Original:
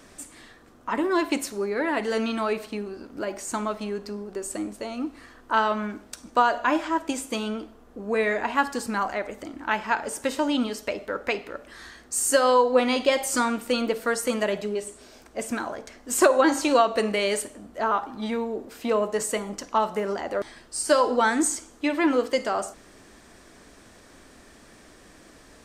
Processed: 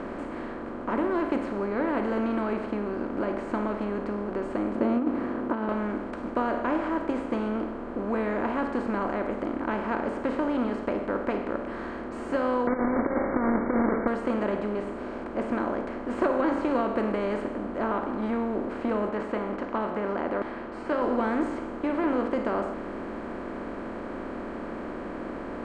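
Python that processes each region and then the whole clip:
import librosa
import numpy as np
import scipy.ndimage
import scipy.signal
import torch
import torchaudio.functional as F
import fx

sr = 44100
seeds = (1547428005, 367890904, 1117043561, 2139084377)

y = fx.chain(x, sr, fx.tilt_eq(slope=-3.5),
    fx.over_compress(threshold_db=-26.0, ratio=-0.5),
    fx.highpass_res(hz=230.0, q=2.1), at=(4.75, 5.69))
y = fx.chain(y, sr, fx.halfwave_hold(),
    fx.over_compress(threshold_db=-21.0, ratio=-0.5),
    fx.brickwall_lowpass(high_hz=2300.0), at=(12.67, 14.08))
y = fx.chain(y, sr, fx.lowpass(hz=2700.0, slope=12),
    fx.tilt_eq(slope=2.5), at=(19.09, 21.02))
y = fx.bin_compress(y, sr, power=0.4)
y = scipy.signal.sosfilt(scipy.signal.bessel(2, 940.0, 'lowpass', norm='mag', fs=sr, output='sos'), y)
y = fx.peak_eq(y, sr, hz=700.0, db=-7.0, octaves=2.2)
y = y * librosa.db_to_amplitude(-4.0)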